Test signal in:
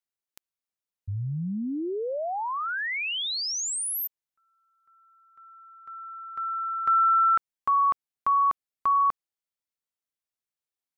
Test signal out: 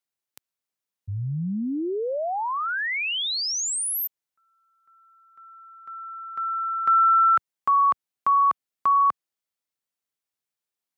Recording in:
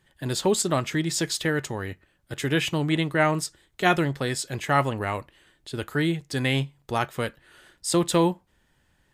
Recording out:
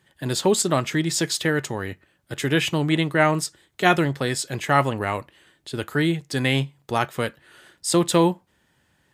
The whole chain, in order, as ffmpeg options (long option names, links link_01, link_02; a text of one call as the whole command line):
ffmpeg -i in.wav -af "highpass=90,volume=3dB" out.wav